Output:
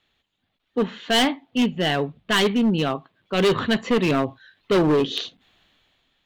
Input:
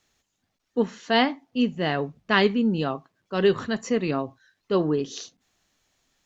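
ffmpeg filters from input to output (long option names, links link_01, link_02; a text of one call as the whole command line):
ffmpeg -i in.wav -af "highshelf=frequency=4500:width_type=q:width=3:gain=-9,dynaudnorm=framelen=130:gausssize=11:maxgain=12dB,volume=15dB,asoftclip=hard,volume=-15dB" out.wav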